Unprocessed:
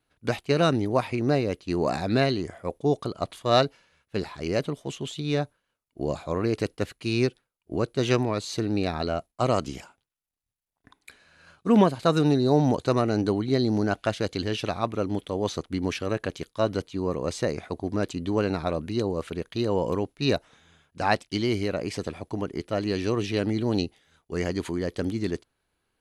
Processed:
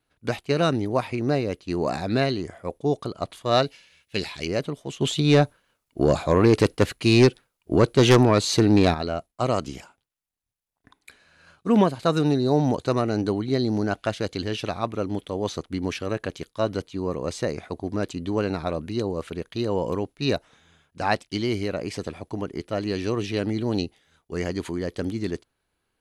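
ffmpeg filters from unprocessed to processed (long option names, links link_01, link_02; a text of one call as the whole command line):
ffmpeg -i in.wav -filter_complex "[0:a]asplit=3[link_01][link_02][link_03];[link_01]afade=type=out:start_time=3.64:duration=0.02[link_04];[link_02]highshelf=frequency=1800:width_type=q:width=1.5:gain=9,afade=type=in:start_time=3.64:duration=0.02,afade=type=out:start_time=4.45:duration=0.02[link_05];[link_03]afade=type=in:start_time=4.45:duration=0.02[link_06];[link_04][link_05][link_06]amix=inputs=3:normalize=0,asplit=3[link_07][link_08][link_09];[link_07]afade=type=out:start_time=5:duration=0.02[link_10];[link_08]aeval=exprs='0.376*sin(PI/2*2*val(0)/0.376)':channel_layout=same,afade=type=in:start_time=5:duration=0.02,afade=type=out:start_time=8.93:duration=0.02[link_11];[link_09]afade=type=in:start_time=8.93:duration=0.02[link_12];[link_10][link_11][link_12]amix=inputs=3:normalize=0" out.wav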